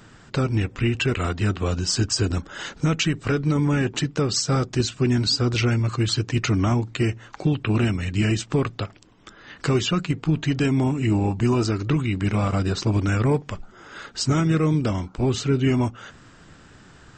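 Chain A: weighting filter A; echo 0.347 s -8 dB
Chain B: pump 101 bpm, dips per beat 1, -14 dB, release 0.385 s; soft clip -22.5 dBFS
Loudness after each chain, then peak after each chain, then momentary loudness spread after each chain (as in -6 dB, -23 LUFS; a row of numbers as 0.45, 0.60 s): -27.5, -29.0 LUFS; -10.0, -22.5 dBFS; 10, 7 LU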